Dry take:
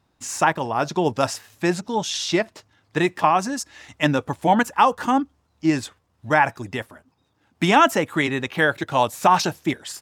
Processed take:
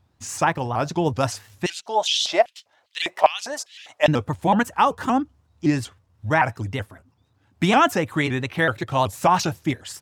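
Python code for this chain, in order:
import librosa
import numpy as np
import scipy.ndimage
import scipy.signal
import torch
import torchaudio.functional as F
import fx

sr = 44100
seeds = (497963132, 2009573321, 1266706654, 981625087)

y = fx.peak_eq(x, sr, hz=95.0, db=13.0, octaves=1.0)
y = fx.filter_lfo_highpass(y, sr, shape='square', hz=2.5, low_hz=630.0, high_hz=3100.0, q=3.8, at=(1.66, 4.08))
y = fx.vibrato_shape(y, sr, shape='saw_up', rate_hz=5.3, depth_cents=160.0)
y = y * 10.0 ** (-2.0 / 20.0)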